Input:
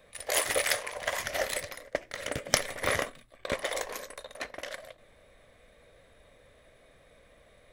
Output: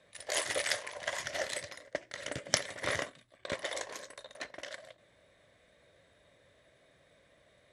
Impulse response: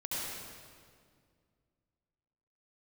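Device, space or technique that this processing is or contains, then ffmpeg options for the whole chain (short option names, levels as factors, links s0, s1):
car door speaker: -af "highpass=99,equalizer=f=230:t=q:w=4:g=-5,equalizer=f=470:t=q:w=4:g=-6,equalizer=f=780:t=q:w=4:g=-4,equalizer=f=1200:t=q:w=4:g=-5,equalizer=f=2400:t=q:w=4:g=-4,lowpass=f=9000:w=0.5412,lowpass=f=9000:w=1.3066,volume=0.75"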